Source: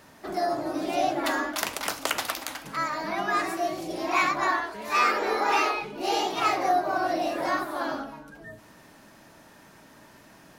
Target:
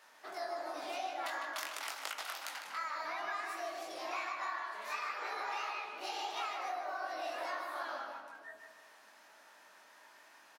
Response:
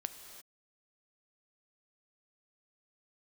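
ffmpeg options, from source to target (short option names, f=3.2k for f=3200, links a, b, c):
-filter_complex "[0:a]highpass=810,highshelf=f=8k:g=-5.5,acompressor=threshold=-32dB:ratio=10,flanger=delay=18.5:depth=5:speed=2.8,asplit=2[a][b];[b]adelay=153,lowpass=f=3.8k:p=1,volume=-5dB,asplit=2[c][d];[d]adelay=153,lowpass=f=3.8k:p=1,volume=0.43,asplit=2[e][f];[f]adelay=153,lowpass=f=3.8k:p=1,volume=0.43,asplit=2[g][h];[h]adelay=153,lowpass=f=3.8k:p=1,volume=0.43,asplit=2[i][j];[j]adelay=153,lowpass=f=3.8k:p=1,volume=0.43[k];[c][e][g][i][k]amix=inputs=5:normalize=0[l];[a][l]amix=inputs=2:normalize=0,volume=-2dB"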